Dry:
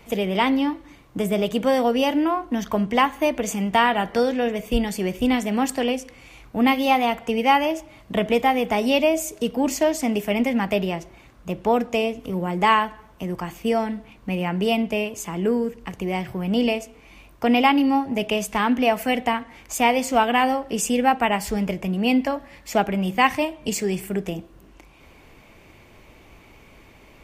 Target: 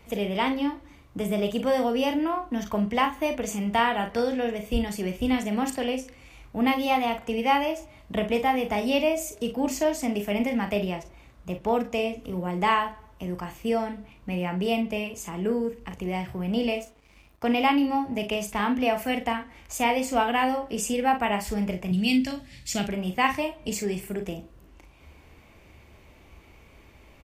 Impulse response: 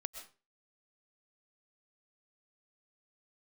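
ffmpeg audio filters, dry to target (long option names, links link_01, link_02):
-filter_complex "[0:a]equalizer=frequency=68:width=2.1:gain=10.5,asettb=1/sr,asplit=3[link_01][link_02][link_03];[link_01]atrim=end=16.704[link_04];[link_02]atrim=start=16.7:end=17.68,asetpts=PTS-STARTPTS,afade=type=in:duration=0.004:curve=qsin,afade=type=out:start_time=0.976:duration=0.004:curve=qsin,aeval=exprs='sgn(val(0))*max(abs(val(0))-0.00355,0)':channel_layout=same[link_05];[link_03]atrim=start=17.676[link_06];[link_04][link_05]acrossfade=duration=0.004:curve1=hsin:curve2=qsin[link_07];[link_07][link_06]acrossfade=duration=0.004:curve1=qsin:curve2=hsin,asettb=1/sr,asplit=3[link_08][link_09][link_10];[link_08]atrim=end=21.914[link_11];[link_09]atrim=start=21.91:end=22.89,asetpts=PTS-STARTPTS,afade=type=in:duration=0.004:curve=qsin,afade=type=out:start_time=0.976:duration=0.004:curve=qsin,equalizer=frequency=125:width_type=o:width=1:gain=11,equalizer=frequency=500:width_type=o:width=1:gain=-7,equalizer=frequency=1000:width_type=o:width=1:gain=-11,equalizer=frequency=4000:width_type=o:width=1:gain=9,equalizer=frequency=8000:width_type=o:width=1:gain=9[link_12];[link_10]atrim=start=22.886[link_13];[link_11][link_12]acrossfade=duration=0.004:curve1=hsin:curve2=qsin[link_14];[link_14][link_13]acrossfade=duration=0.004:curve1=qsin:curve2=hsin,aecho=1:1:39|54:0.376|0.188,volume=-5.5dB"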